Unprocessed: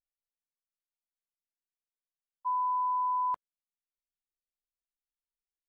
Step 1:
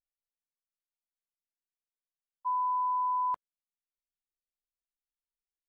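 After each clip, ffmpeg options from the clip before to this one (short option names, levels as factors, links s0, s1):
-af anull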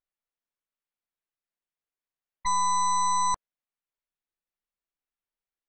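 -af "bass=f=250:g=-3,treble=f=4000:g=-14,aeval=exprs='0.0531*(cos(1*acos(clip(val(0)/0.0531,-1,1)))-cos(1*PI/2))+0.0168*(cos(8*acos(clip(val(0)/0.0531,-1,1)))-cos(8*PI/2))':c=same,tremolo=f=180:d=0.261,volume=1.78"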